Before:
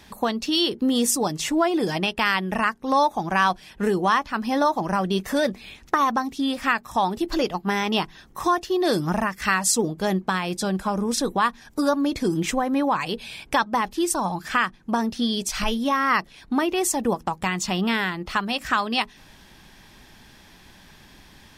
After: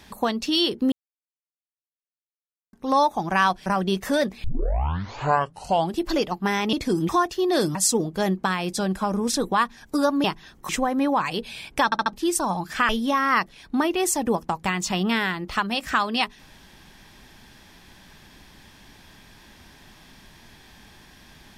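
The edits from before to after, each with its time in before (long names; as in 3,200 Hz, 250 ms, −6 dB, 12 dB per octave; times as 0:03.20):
0:00.92–0:02.73: silence
0:03.66–0:04.89: remove
0:05.67: tape start 1.55 s
0:07.96–0:08.41: swap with 0:12.08–0:12.44
0:09.07–0:09.59: remove
0:13.60: stutter in place 0.07 s, 4 plays
0:14.64–0:15.67: remove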